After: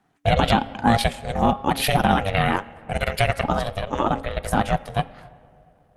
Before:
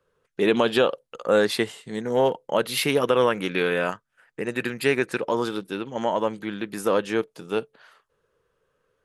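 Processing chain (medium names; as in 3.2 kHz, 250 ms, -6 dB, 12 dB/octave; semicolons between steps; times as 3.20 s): in parallel at +0.5 dB: peak limiter -13.5 dBFS, peak gain reduction 6.5 dB; on the sum: granular stretch 0.66×, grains 44 ms; on a send at -18 dB: reverberation RT60 2.5 s, pre-delay 5 ms; on the sum: ring modulator 290 Hz; de-hum 272.5 Hz, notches 13; trim +2 dB; Opus 48 kbps 48 kHz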